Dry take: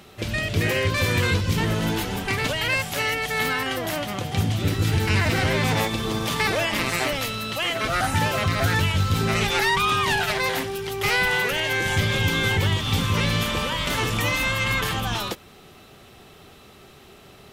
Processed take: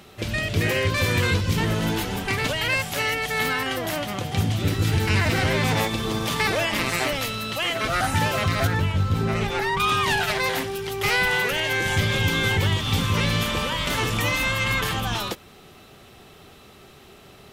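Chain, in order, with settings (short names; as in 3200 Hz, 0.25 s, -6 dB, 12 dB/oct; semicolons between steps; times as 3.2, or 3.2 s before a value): 8.67–9.8 high shelf 2000 Hz -11 dB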